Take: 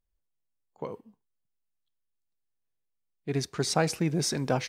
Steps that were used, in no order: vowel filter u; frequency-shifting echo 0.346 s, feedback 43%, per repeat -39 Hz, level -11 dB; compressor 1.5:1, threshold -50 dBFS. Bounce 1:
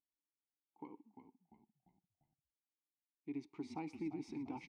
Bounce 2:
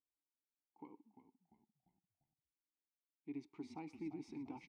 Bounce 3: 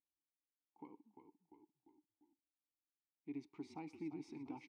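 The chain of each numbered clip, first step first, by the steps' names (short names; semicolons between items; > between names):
vowel filter > frequency-shifting echo > compressor; compressor > vowel filter > frequency-shifting echo; frequency-shifting echo > compressor > vowel filter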